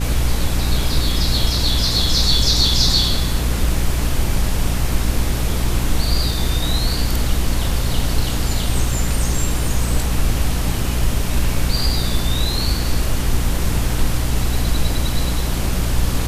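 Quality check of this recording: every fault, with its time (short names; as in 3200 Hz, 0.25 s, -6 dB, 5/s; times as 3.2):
hum 60 Hz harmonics 5 -22 dBFS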